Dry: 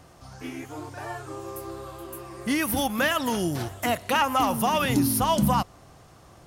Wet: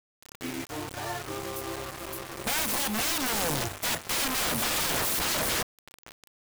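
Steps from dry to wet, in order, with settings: wrapped overs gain 23.5 dB; band-limited delay 0.674 s, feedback 59%, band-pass 820 Hz, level -14 dB; requantised 6-bit, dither none

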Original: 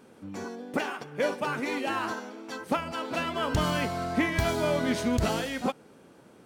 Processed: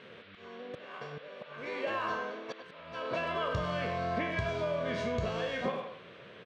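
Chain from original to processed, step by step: spectral trails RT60 0.48 s; HPF 85 Hz; comb 1.8 ms, depth 65%; compressor 12:1, threshold -29 dBFS, peak gain reduction 12.5 dB; auto swell 0.457 s; band noise 1200–3700 Hz -55 dBFS; air absorption 180 m; speakerphone echo 0.1 s, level -7 dB

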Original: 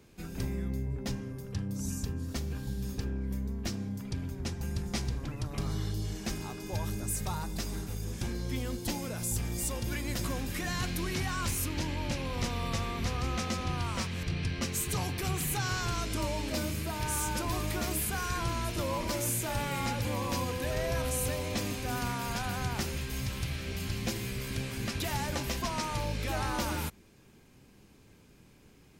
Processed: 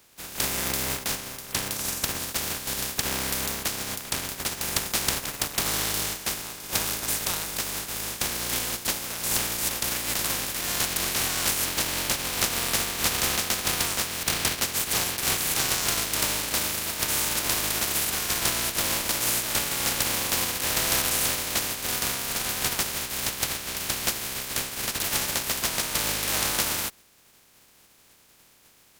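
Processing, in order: spectral contrast lowered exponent 0.21; added harmonics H 5 -9 dB, 7 -10 dB, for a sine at -14.5 dBFS; gain +6 dB

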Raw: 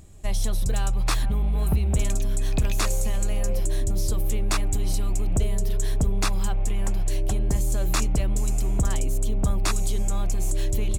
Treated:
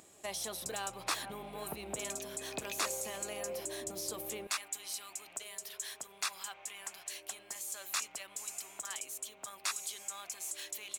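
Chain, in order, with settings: limiter -21 dBFS, peak gain reduction 6.5 dB; HPF 430 Hz 12 dB/oct, from 4.47 s 1300 Hz

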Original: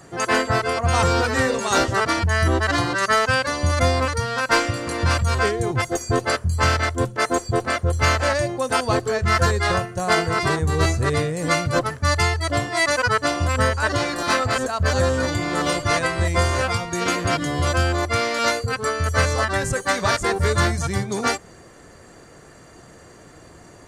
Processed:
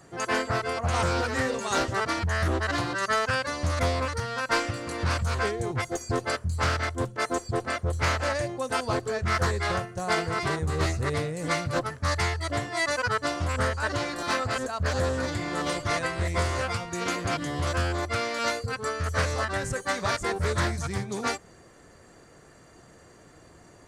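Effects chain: Doppler distortion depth 0.27 ms; gain -7 dB

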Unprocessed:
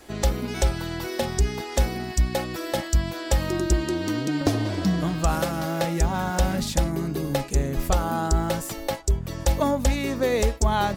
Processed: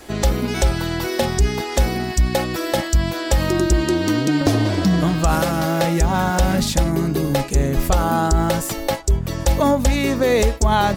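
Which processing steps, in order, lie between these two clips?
limiter -15 dBFS, peak gain reduction 3.5 dB; gain +7.5 dB

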